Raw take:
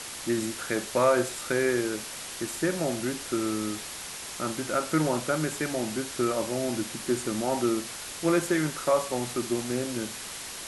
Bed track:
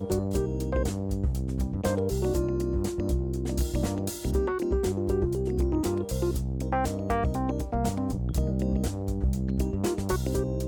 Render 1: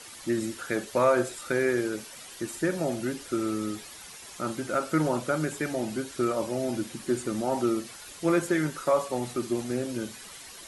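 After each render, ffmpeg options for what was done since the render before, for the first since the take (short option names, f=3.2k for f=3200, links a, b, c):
-af "afftdn=nr=10:nf=-39"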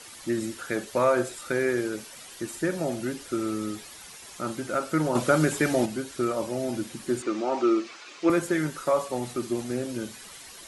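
-filter_complex "[0:a]asettb=1/sr,asplit=3[a][b][c];[a]atrim=end=5.154[d];[b]atrim=start=5.15:end=5.86,asetpts=PTS-STARTPTS,afade=t=in:d=0.004:c=qsin,afade=t=out:st=0.706:d=0.004:c=qsin,acontrast=67[e];[c]atrim=start=5.856[f];[d][e]acrossfade=d=0.004:c1=hsin:c2=qsin[g];[g][f]acrossfade=d=0.004:c1=qsin:c2=hsin,asettb=1/sr,asplit=3[h][i][j];[h]atrim=end=7.224[k];[i]atrim=start=7.22:end=8.3,asetpts=PTS-STARTPTS,afade=t=in:d=0.004:c=qsin,afade=t=out:st=1.076:d=0.004:c=qsin,highpass=300,equalizer=f=330:t=q:w=4:g=8,equalizer=f=1.2k:t=q:w=4:g=7,equalizer=f=2.4k:t=q:w=4:g=7,lowpass=f=6.3k:w=0.5412,lowpass=f=6.3k:w=1.3066[l];[j]atrim=start=8.296[m];[k][l]acrossfade=d=0.004:c1=hsin:c2=qsin[n];[n][m]acrossfade=d=0.004:c1=qsin:c2=hsin"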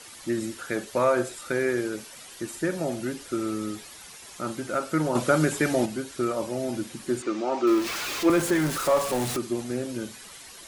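-filter_complex "[0:a]asettb=1/sr,asplit=3[a][b][c];[a]atrim=end=7.674[d];[b]atrim=start=7.67:end=9.37,asetpts=PTS-STARTPTS,afade=t=in:d=0.004:c=qsin,afade=t=out:st=1.696:d=0.004:c=qsin,aeval=exprs='val(0)+0.5*0.0447*sgn(val(0))':c=same[e];[c]atrim=start=9.366[f];[d][e]acrossfade=d=0.004:c1=hsin:c2=qsin[g];[g][f]acrossfade=d=0.004:c1=qsin:c2=hsin"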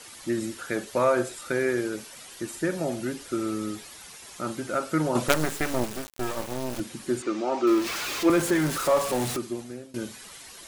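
-filter_complex "[0:a]asettb=1/sr,asplit=3[a][b][c];[a]atrim=end=5.284[d];[b]atrim=start=5.28:end=6.8,asetpts=PTS-STARTPTS,afade=t=in:d=0.004:c=qsin,afade=t=out:st=1.516:d=0.004:c=qsin,acrusher=bits=3:dc=4:mix=0:aa=0.000001[e];[c]atrim=start=6.796[f];[d][e]acrossfade=d=0.004:c1=hsin:c2=qsin[g];[g][f]acrossfade=d=0.004:c1=qsin:c2=hsin,asplit=2[h][i];[h]atrim=end=9.94,asetpts=PTS-STARTPTS,afade=t=out:st=9.26:d=0.68:silence=0.105925[j];[i]atrim=start=9.94,asetpts=PTS-STARTPTS,afade=t=in:d=0.004:c=hsin:silence=0.105925[k];[j][k]concat=n=2:v=0:a=1"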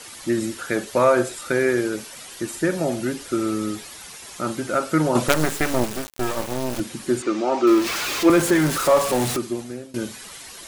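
-af "volume=5.5dB,alimiter=limit=-2dB:level=0:latency=1"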